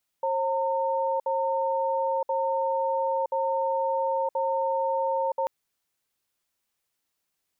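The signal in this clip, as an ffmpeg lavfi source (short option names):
-f lavfi -i "aevalsrc='0.0501*(sin(2*PI*537*t)+sin(2*PI*911*t))*clip(min(mod(t,1.03),0.97-mod(t,1.03))/0.005,0,1)':d=5.24:s=44100"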